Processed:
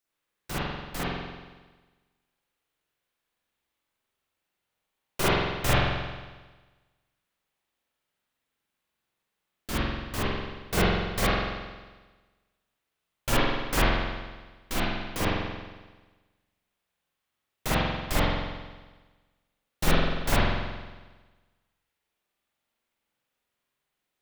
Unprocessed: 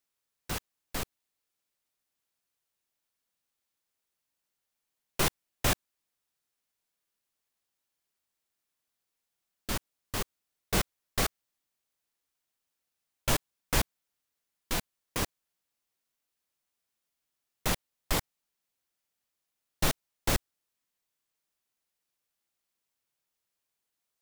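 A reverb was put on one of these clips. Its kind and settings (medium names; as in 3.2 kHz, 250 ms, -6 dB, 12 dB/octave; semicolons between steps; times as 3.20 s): spring tank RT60 1.3 s, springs 45 ms, chirp 35 ms, DRR -9 dB; trim -2 dB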